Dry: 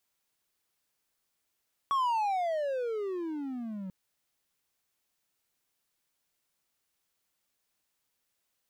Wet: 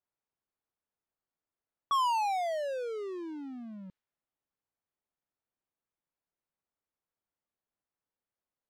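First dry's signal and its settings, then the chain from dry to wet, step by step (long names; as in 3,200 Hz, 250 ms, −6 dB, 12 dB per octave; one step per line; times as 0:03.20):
pitch glide with a swell triangle, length 1.99 s, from 1,130 Hz, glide −31.5 semitones, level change −11.5 dB, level −22.5 dB
low-pass that shuts in the quiet parts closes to 1,100 Hz, open at −28 dBFS
high-shelf EQ 3,200 Hz +11 dB
expander for the loud parts 1.5 to 1, over −40 dBFS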